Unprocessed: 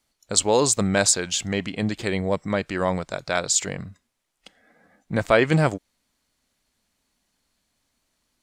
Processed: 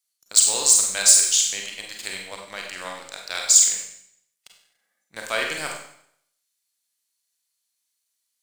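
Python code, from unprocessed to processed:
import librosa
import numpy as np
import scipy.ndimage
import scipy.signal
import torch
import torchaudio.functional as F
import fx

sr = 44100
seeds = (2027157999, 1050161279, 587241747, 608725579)

y = np.diff(x, prepend=0.0)
y = fx.leveller(y, sr, passes=2)
y = fx.rev_schroeder(y, sr, rt60_s=0.66, comb_ms=32, drr_db=0.5)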